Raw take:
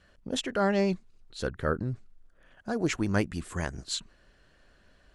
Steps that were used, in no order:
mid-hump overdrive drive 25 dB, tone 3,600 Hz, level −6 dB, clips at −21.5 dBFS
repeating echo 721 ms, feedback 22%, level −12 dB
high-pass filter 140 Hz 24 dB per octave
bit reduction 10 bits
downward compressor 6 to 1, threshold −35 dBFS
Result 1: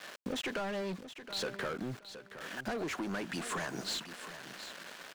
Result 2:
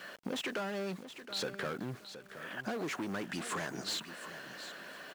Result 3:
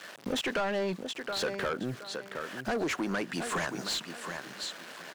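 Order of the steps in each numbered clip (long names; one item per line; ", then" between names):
high-pass filter, then bit reduction, then mid-hump overdrive, then downward compressor, then repeating echo
mid-hump overdrive, then high-pass filter, then downward compressor, then bit reduction, then repeating echo
bit reduction, then high-pass filter, then downward compressor, then repeating echo, then mid-hump overdrive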